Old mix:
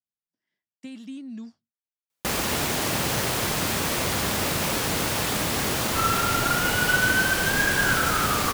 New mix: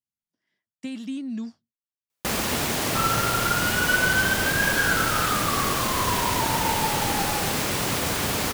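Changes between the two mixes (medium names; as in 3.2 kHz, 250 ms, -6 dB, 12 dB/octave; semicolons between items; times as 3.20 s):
speech +6.0 dB; second sound: entry -3.00 s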